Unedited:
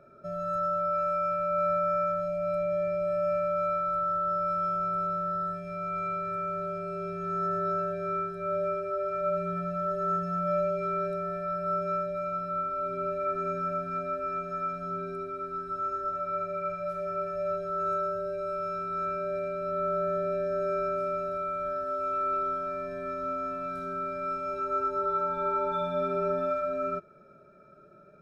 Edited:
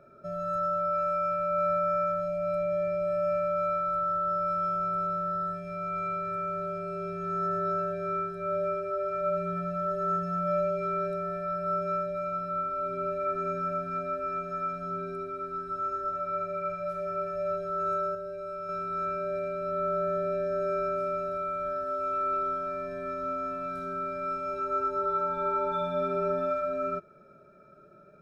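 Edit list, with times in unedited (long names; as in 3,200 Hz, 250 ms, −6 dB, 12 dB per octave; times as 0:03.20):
0:18.15–0:18.69: clip gain −4.5 dB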